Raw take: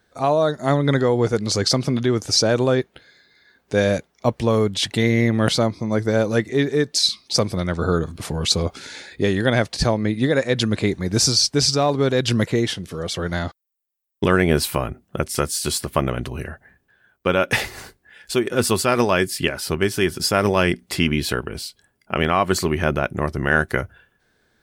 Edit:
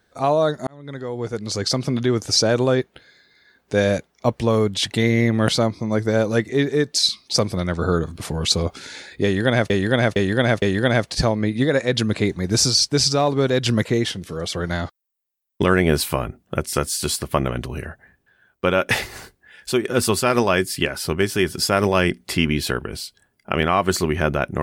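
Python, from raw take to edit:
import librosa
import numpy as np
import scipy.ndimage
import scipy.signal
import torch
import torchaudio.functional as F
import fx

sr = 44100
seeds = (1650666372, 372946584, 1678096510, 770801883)

y = fx.edit(x, sr, fx.fade_in_span(start_s=0.67, length_s=1.42),
    fx.repeat(start_s=9.24, length_s=0.46, count=4), tone=tone)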